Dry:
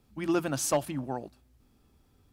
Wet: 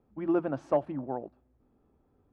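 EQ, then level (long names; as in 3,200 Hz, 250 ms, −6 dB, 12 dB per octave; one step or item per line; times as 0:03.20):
low-pass filter 1,600 Hz 12 dB per octave
parametric band 490 Hz +9.5 dB 2.5 octaves
−7.5 dB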